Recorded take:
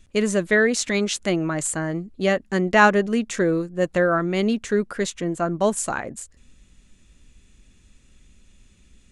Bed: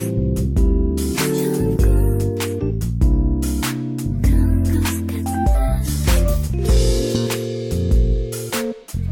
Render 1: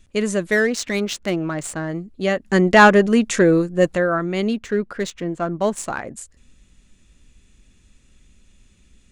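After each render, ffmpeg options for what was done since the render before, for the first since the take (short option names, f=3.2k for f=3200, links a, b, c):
-filter_complex "[0:a]asettb=1/sr,asplit=3[a][b][c];[a]atrim=end=0.514[d];[b]atrim=start=0.51:end=1.89,asetpts=PTS-STARTPTS,afade=t=in:d=0.004:c=qsin,afade=t=out:st=1.376:d=0.004:c=qsin,adynamicsmooth=sensitivity=4:basefreq=2.9k[e];[c]atrim=start=1.886[f];[d][e]acrossfade=d=0.004:c1=hsin:c2=qsin[g];[g][f]acrossfade=d=0.004:c1=qsin:c2=hsin,asplit=3[h][i][j];[h]afade=t=out:st=2.44:d=0.02[k];[i]acontrast=71,afade=t=in:st=2.44:d=0.02,afade=t=out:st=3.94:d=0.02[l];[j]afade=t=in:st=3.94:d=0.02[m];[k][l][m]amix=inputs=3:normalize=0,asettb=1/sr,asplit=3[n][o][p];[n]atrim=end=4.564[q];[o]atrim=start=4.56:end=6.02,asetpts=PTS-STARTPTS,afade=t=in:d=0.004:c=qsin,afade=t=out:st=1.456:d=0.004:c=qsin,adynamicsmooth=sensitivity=4.5:basefreq=4k[r];[p]atrim=start=6.016[s];[q][r]acrossfade=d=0.004:c1=hsin:c2=qsin[t];[t][s]acrossfade=d=0.004:c1=qsin:c2=hsin"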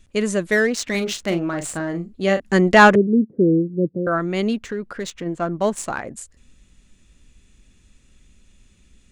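-filter_complex "[0:a]asettb=1/sr,asplit=3[a][b][c];[a]atrim=end=0.904[d];[b]atrim=start=0.9:end=2.4,asetpts=PTS-STARTPTS,afade=t=in:d=0.004:c=qsin,afade=t=out:st=1.496:d=0.004:c=qsin,asplit=2[e][f];[f]adelay=41,volume=-8dB[g];[e][g]amix=inputs=2:normalize=0,atrim=end_sample=66150[h];[c]atrim=start=2.396[i];[d][h]acrossfade=d=0.004:c1=hsin:c2=qsin[j];[j][i]acrossfade=d=0.004:c1=qsin:c2=hsin,asettb=1/sr,asplit=3[k][l][m];[k]atrim=end=2.954[n];[l]atrim=start=2.95:end=4.07,asetpts=PTS-STARTPTS,afade=t=in:d=0.004:c=qsin,afade=t=out:st=1.116:d=0.004:c=qsin,asuperpass=centerf=220:order=8:qfactor=0.68[o];[m]atrim=start=4.066[p];[n][o]acrossfade=d=0.004:c1=hsin:c2=qsin[q];[q][p]acrossfade=d=0.004:c1=qsin:c2=hsin,asplit=3[r][s][t];[r]afade=t=out:st=4.7:d=0.02[u];[s]acompressor=threshold=-24dB:ratio=3:attack=3.2:release=140:knee=1:detection=peak,afade=t=in:st=4.7:d=0.02,afade=t=out:st=5.25:d=0.02[v];[t]afade=t=in:st=5.25:d=0.02[w];[u][v][w]amix=inputs=3:normalize=0"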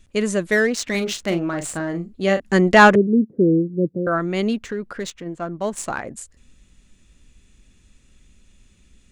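-filter_complex "[0:a]asplit=3[a][b][c];[a]atrim=end=5.122[d];[b]atrim=start=5.118:end=5.732,asetpts=PTS-STARTPTS,volume=-4.5dB[e];[c]atrim=start=5.728[f];[d][e]acrossfade=d=0.004:c1=hsin:c2=hsin[g];[g][f]acrossfade=d=0.004:c1=hsin:c2=hsin"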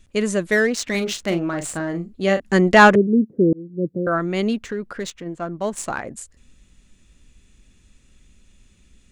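-filter_complex "[0:a]asplit=2[a][b];[a]atrim=end=3.53,asetpts=PTS-STARTPTS,afade=t=out:st=3.526:d=0.004:c=hsin[c];[b]atrim=start=3.53,asetpts=PTS-STARTPTS,afade=t=in:d=0.42[d];[c][d]concat=n=2:v=0:a=1"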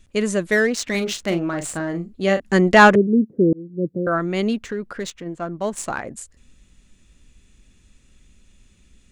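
-af anull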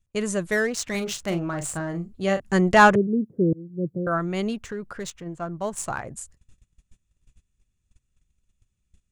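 -af "agate=range=-20dB:threshold=-47dB:ratio=16:detection=peak,equalizer=f=125:t=o:w=1:g=5,equalizer=f=250:t=o:w=1:g=-8,equalizer=f=500:t=o:w=1:g=-4,equalizer=f=2k:t=o:w=1:g=-5,equalizer=f=4k:t=o:w=1:g=-5"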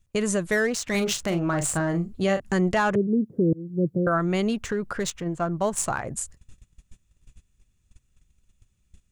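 -filter_complex "[0:a]asplit=2[a][b];[b]acompressor=threshold=-30dB:ratio=6,volume=1dB[c];[a][c]amix=inputs=2:normalize=0,alimiter=limit=-14dB:level=0:latency=1:release=203"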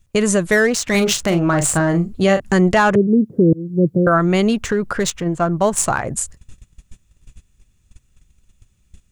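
-af "volume=8.5dB"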